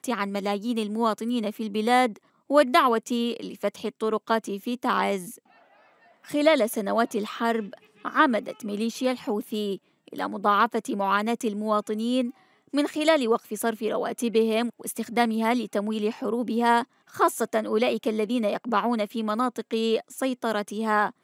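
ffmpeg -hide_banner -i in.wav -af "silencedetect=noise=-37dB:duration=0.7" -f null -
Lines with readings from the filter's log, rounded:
silence_start: 5.35
silence_end: 6.25 | silence_duration: 0.90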